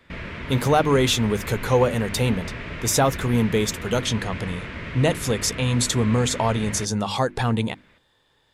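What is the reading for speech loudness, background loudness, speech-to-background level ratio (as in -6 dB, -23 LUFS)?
-22.5 LUFS, -33.5 LUFS, 11.0 dB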